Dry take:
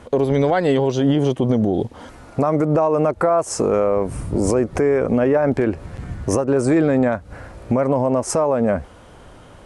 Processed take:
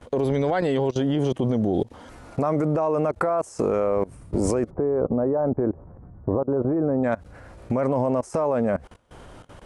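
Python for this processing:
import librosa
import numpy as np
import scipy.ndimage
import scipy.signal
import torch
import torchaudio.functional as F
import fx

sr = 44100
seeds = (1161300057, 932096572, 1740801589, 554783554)

y = fx.lowpass(x, sr, hz=1100.0, slope=24, at=(4.69, 7.03), fade=0.02)
y = fx.level_steps(y, sr, step_db=22)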